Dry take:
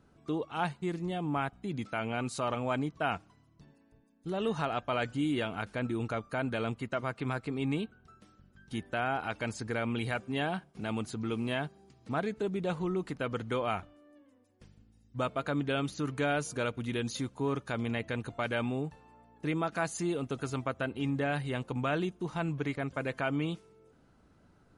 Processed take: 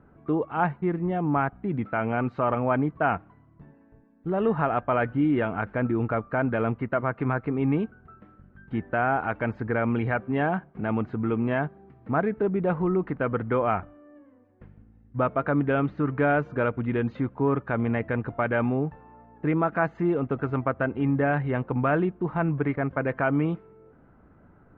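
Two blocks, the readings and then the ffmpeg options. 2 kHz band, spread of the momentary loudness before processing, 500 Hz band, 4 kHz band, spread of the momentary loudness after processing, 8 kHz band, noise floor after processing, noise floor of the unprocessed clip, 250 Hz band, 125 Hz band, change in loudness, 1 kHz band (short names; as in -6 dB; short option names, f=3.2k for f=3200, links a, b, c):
+6.0 dB, 5 LU, +8.0 dB, n/a, 5 LU, under -30 dB, -56 dBFS, -64 dBFS, +8.0 dB, +8.0 dB, +7.5 dB, +8.0 dB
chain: -af "lowpass=f=1.9k:w=0.5412,lowpass=f=1.9k:w=1.3066,volume=8dB"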